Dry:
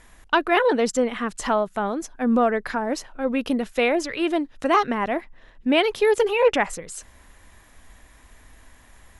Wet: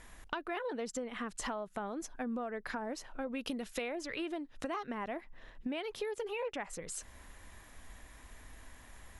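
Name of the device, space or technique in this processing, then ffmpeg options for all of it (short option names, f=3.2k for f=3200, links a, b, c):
serial compression, peaks first: -filter_complex "[0:a]acompressor=threshold=-28dB:ratio=6,acompressor=threshold=-40dB:ratio=1.5,asettb=1/sr,asplit=3[a][b][c];[a]atrim=end=3.274[d];[b]atrim=start=3.27:end=3.82,asetpts=PTS-STARTPTS,afade=t=in:d=0.004:c=qsin,afade=t=out:st=0.546:d=0.004:c=qsin,adynamicequalizer=threshold=0.002:dfrequency=2300:dqfactor=0.7:tfrequency=2300:tqfactor=0.7:attack=5:release=100:ratio=0.375:range=3:mode=boostabove:tftype=highshelf[e];[c]atrim=start=3.816[f];[d][e]acrossfade=d=0.004:c1=hsin:c2=qsin[g];[g][f]acrossfade=d=0.004:c1=qsin:c2=hsin,volume=-3dB"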